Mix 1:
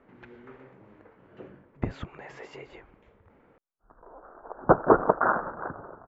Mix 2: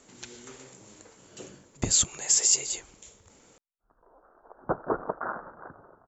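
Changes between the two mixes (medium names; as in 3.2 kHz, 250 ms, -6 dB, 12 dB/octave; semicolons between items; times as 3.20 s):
background -10.0 dB; master: remove low-pass 2 kHz 24 dB/octave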